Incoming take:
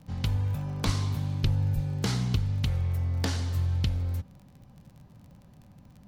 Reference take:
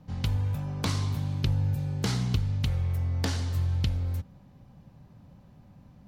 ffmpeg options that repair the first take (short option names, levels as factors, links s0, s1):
-filter_complex "[0:a]adeclick=t=4,asplit=3[s0][s1][s2];[s0]afade=t=out:st=0.85:d=0.02[s3];[s1]highpass=f=140:w=0.5412,highpass=f=140:w=1.3066,afade=t=in:st=0.85:d=0.02,afade=t=out:st=0.97:d=0.02[s4];[s2]afade=t=in:st=0.97:d=0.02[s5];[s3][s4][s5]amix=inputs=3:normalize=0,asplit=3[s6][s7][s8];[s6]afade=t=out:st=1.42:d=0.02[s9];[s7]highpass=f=140:w=0.5412,highpass=f=140:w=1.3066,afade=t=in:st=1.42:d=0.02,afade=t=out:st=1.54:d=0.02[s10];[s8]afade=t=in:st=1.54:d=0.02[s11];[s9][s10][s11]amix=inputs=3:normalize=0,asplit=3[s12][s13][s14];[s12]afade=t=out:st=1.74:d=0.02[s15];[s13]highpass=f=140:w=0.5412,highpass=f=140:w=1.3066,afade=t=in:st=1.74:d=0.02,afade=t=out:st=1.86:d=0.02[s16];[s14]afade=t=in:st=1.86:d=0.02[s17];[s15][s16][s17]amix=inputs=3:normalize=0"